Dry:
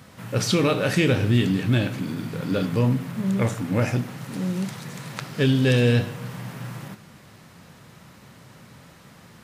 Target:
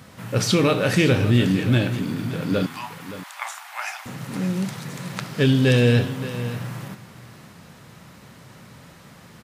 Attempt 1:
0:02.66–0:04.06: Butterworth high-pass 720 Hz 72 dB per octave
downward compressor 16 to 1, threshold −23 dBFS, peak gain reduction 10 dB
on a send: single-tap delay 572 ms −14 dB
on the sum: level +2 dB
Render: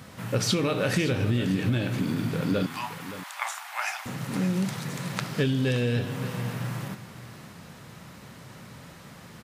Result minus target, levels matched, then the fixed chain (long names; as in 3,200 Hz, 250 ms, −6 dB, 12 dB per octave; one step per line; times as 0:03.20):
downward compressor: peak gain reduction +10 dB
0:02.66–0:04.06: Butterworth high-pass 720 Hz 72 dB per octave
on a send: single-tap delay 572 ms −14 dB
on the sum: level +2 dB